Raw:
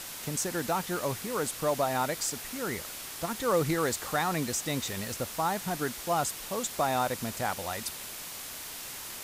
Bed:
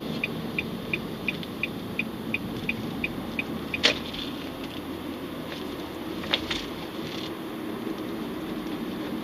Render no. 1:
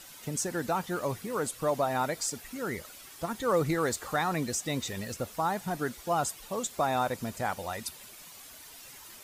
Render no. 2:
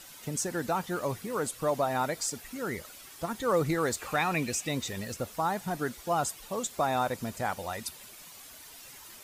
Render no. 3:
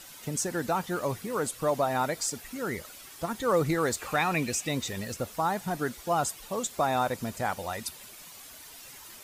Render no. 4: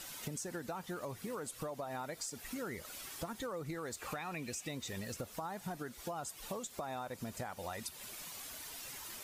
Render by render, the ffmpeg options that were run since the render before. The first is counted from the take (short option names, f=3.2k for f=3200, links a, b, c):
-af "afftdn=nr=11:nf=-41"
-filter_complex "[0:a]asettb=1/sr,asplit=3[a][b][c];[a]atrim=end=3.994[d];[b]atrim=start=3.99:end=4.69,asetpts=PTS-STARTPTS,afade=t=in:d=0.004:c=qsin,afade=t=out:st=0.696:d=0.004:c=qsin,equalizer=f=2.5k:t=o:w=0.29:g=14[e];[c]atrim=start=4.686[f];[d][e]acrossfade=d=0.004:c1=hsin:c2=qsin[g];[g][f]acrossfade=d=0.004:c1=qsin:c2=hsin"
-af "volume=1.5dB"
-af "alimiter=limit=-22.5dB:level=0:latency=1:release=294,acompressor=threshold=-39dB:ratio=6"